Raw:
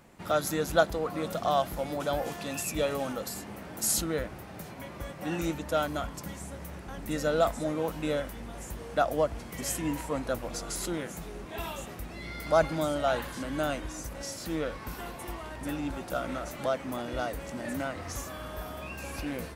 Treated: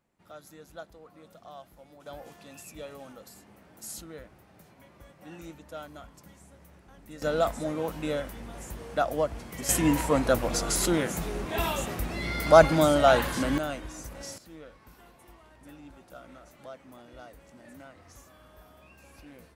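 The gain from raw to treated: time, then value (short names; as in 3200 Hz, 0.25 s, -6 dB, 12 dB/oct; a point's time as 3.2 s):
-20 dB
from 2.06 s -13 dB
from 7.22 s -0.5 dB
from 9.69 s +8 dB
from 13.58 s -2.5 dB
from 14.38 s -15 dB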